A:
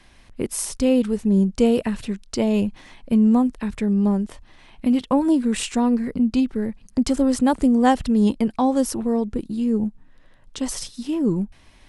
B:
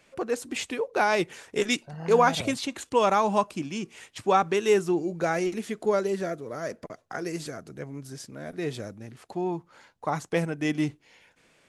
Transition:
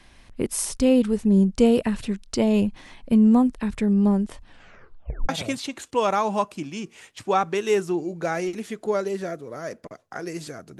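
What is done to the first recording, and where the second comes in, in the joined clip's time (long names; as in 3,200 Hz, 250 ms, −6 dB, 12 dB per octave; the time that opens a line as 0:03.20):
A
0:04.44: tape stop 0.85 s
0:05.29: continue with B from 0:02.28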